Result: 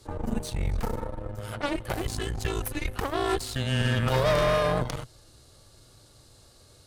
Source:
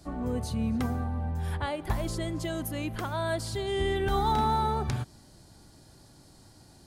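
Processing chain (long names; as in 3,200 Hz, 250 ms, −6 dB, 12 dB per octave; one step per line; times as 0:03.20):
elliptic high-pass filter 150 Hz
frequency shifter −270 Hz
harmonic generator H 6 −12 dB, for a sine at −17 dBFS
level +3 dB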